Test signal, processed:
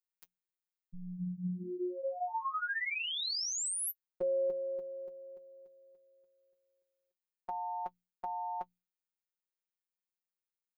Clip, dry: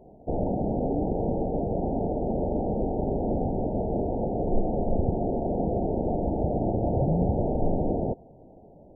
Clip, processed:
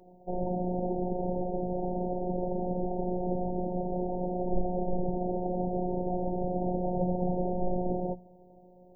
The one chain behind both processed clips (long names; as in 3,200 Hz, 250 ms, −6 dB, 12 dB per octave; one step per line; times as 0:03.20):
mains-hum notches 60/120/180/240 Hz
notch comb filter 170 Hz
phases set to zero 180 Hz